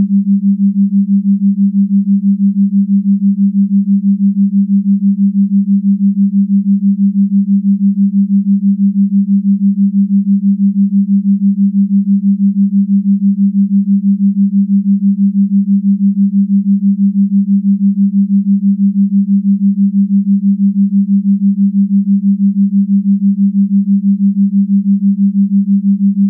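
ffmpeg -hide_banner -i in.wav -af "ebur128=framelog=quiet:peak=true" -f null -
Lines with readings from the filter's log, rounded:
Integrated loudness:
  I:         -11.4 LUFS
  Threshold: -21.4 LUFS
Loudness range:
  LRA:         0.1 LU
  Threshold: -31.4 LUFS
  LRA low:   -11.4 LUFS
  LRA high:  -11.3 LUFS
True peak:
  Peak:       -4.4 dBFS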